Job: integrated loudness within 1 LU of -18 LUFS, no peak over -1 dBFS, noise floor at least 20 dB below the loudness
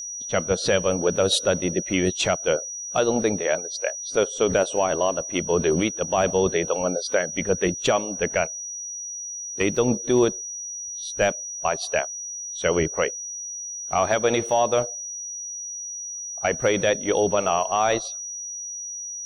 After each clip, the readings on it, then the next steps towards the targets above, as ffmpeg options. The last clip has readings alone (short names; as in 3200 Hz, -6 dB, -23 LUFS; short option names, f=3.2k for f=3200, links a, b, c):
steady tone 5800 Hz; tone level -31 dBFS; loudness -24.0 LUFS; peak -9.5 dBFS; loudness target -18.0 LUFS
-> -af "bandreject=f=5.8k:w=30"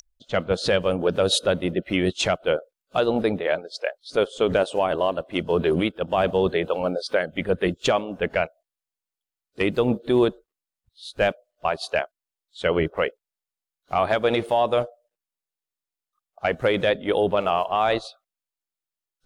steady tone none; loudness -24.0 LUFS; peak -10.5 dBFS; loudness target -18.0 LUFS
-> -af "volume=6dB"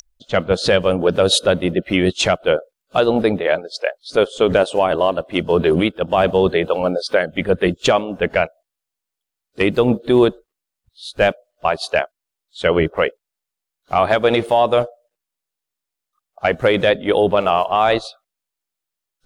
loudness -18.0 LUFS; peak -4.5 dBFS; noise floor -84 dBFS